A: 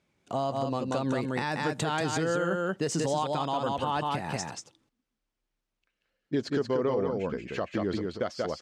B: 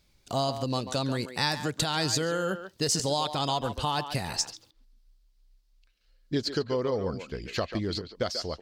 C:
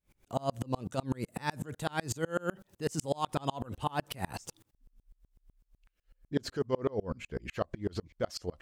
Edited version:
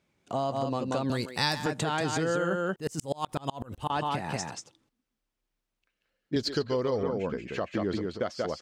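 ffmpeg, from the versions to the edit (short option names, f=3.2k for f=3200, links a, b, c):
-filter_complex "[1:a]asplit=2[a][b];[0:a]asplit=4[c][d][e][f];[c]atrim=end=1.102[g];[a]atrim=start=1.098:end=1.662[h];[d]atrim=start=1.658:end=2.762[i];[2:a]atrim=start=2.758:end=3.902[j];[e]atrim=start=3.898:end=6.362[k];[b]atrim=start=6.358:end=7.032[l];[f]atrim=start=7.028[m];[g][h]acrossfade=d=0.004:c1=hsin:c2=hsin[n];[n][i]acrossfade=d=0.004:c1=hsin:c2=hsin[o];[o][j]acrossfade=d=0.004:c1=hsin:c2=hsin[p];[p][k]acrossfade=d=0.004:c1=hsin:c2=hsin[q];[q][l]acrossfade=d=0.004:c1=hsin:c2=hsin[r];[r][m]acrossfade=d=0.004:c1=hsin:c2=hsin"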